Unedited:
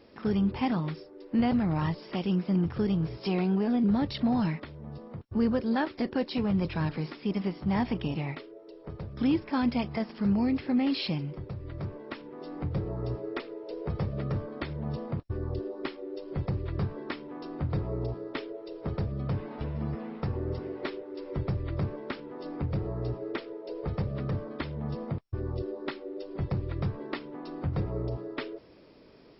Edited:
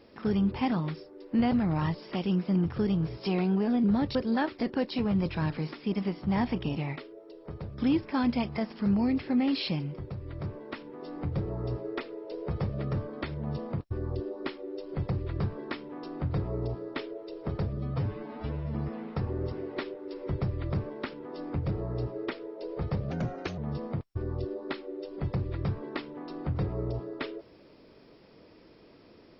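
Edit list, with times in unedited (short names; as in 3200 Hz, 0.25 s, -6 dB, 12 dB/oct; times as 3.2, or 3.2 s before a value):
4.15–5.54 cut
19.16–19.81 stretch 1.5×
24.17–24.75 speed 123%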